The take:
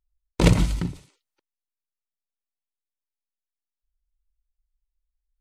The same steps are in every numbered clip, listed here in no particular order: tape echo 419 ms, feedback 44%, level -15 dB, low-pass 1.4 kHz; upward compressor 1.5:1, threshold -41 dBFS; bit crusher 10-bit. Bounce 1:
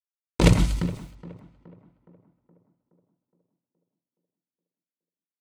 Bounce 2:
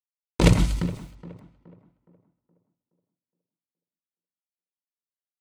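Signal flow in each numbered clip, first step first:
bit crusher > tape echo > upward compressor; bit crusher > upward compressor > tape echo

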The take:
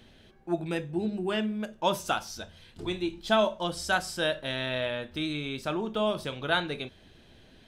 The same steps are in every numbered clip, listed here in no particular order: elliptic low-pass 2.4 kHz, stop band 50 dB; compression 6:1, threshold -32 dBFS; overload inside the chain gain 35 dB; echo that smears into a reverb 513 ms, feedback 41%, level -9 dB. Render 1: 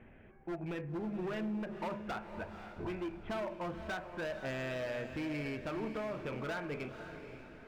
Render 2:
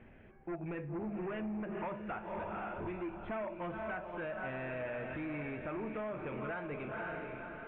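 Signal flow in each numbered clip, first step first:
elliptic low-pass > compression > overload inside the chain > echo that smears into a reverb; echo that smears into a reverb > compression > overload inside the chain > elliptic low-pass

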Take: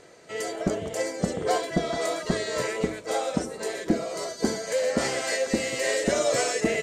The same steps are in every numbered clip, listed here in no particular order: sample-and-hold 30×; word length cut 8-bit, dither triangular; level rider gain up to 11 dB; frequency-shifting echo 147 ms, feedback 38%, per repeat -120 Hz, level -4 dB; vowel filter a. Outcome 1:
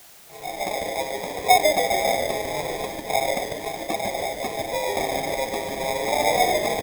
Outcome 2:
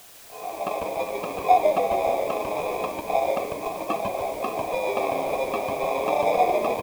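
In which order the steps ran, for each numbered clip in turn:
vowel filter > sample-and-hold > frequency-shifting echo > level rider > word length cut; sample-and-hold > vowel filter > level rider > word length cut > frequency-shifting echo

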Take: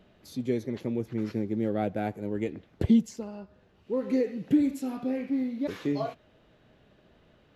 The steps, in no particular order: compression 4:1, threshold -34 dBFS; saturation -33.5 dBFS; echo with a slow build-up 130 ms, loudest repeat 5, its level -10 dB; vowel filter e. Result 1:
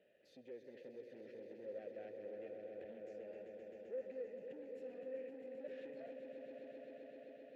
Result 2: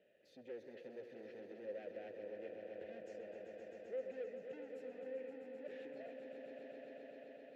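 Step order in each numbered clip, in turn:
compression > echo with a slow build-up > saturation > vowel filter; saturation > echo with a slow build-up > compression > vowel filter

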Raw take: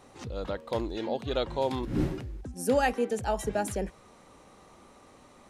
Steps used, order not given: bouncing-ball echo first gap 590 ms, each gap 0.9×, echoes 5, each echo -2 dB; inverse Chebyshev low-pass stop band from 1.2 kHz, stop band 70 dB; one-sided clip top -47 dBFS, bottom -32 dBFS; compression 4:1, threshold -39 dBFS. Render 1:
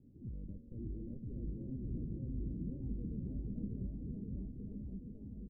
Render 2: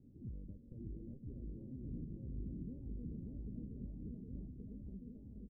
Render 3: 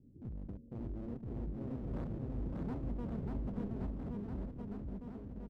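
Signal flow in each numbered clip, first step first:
one-sided clip > inverse Chebyshev low-pass > compression > bouncing-ball echo; compression > bouncing-ball echo > one-sided clip > inverse Chebyshev low-pass; inverse Chebyshev low-pass > one-sided clip > compression > bouncing-ball echo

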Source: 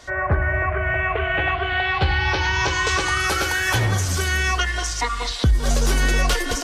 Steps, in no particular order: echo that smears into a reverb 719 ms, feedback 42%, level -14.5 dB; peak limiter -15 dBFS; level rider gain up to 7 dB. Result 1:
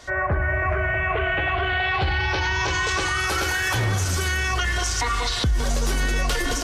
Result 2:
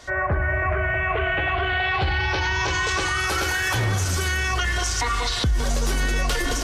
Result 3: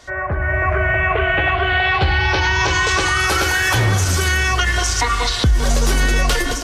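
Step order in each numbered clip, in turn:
echo that smears into a reverb > level rider > peak limiter; level rider > echo that smears into a reverb > peak limiter; echo that smears into a reverb > peak limiter > level rider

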